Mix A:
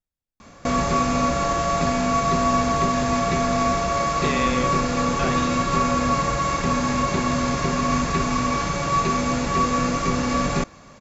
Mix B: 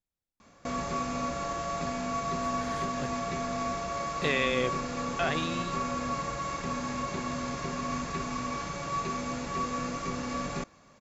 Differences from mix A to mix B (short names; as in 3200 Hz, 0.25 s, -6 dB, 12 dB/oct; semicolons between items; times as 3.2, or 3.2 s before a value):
background -11.0 dB; master: add low shelf 110 Hz -5 dB